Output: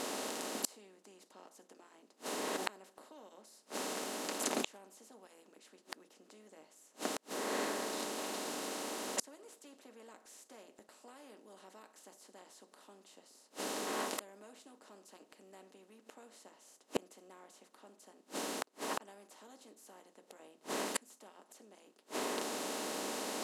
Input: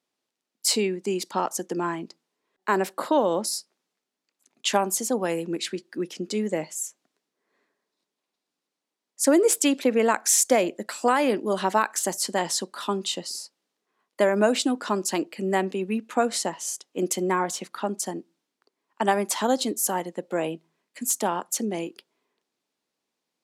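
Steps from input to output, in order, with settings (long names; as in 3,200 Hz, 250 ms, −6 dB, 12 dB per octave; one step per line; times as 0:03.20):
compressor on every frequency bin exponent 0.4
notch comb filter 170 Hz
gate with flip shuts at −17 dBFS, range −38 dB
level −1 dB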